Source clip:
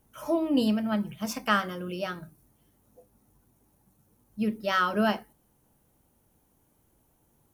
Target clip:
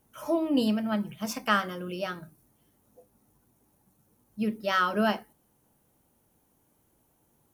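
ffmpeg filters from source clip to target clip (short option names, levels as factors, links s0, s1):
-af "lowshelf=f=76:g=-9"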